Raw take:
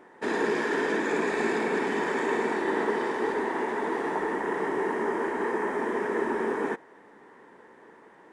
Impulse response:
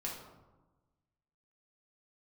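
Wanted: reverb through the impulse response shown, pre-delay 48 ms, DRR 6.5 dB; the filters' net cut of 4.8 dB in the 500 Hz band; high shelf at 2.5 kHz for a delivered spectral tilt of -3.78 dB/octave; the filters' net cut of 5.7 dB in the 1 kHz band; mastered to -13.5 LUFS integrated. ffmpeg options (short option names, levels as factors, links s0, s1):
-filter_complex "[0:a]equalizer=f=500:t=o:g=-5.5,equalizer=f=1000:t=o:g=-6,highshelf=f=2500:g=6,asplit=2[s0][s1];[1:a]atrim=start_sample=2205,adelay=48[s2];[s1][s2]afir=irnorm=-1:irlink=0,volume=0.422[s3];[s0][s3]amix=inputs=2:normalize=0,volume=6.68"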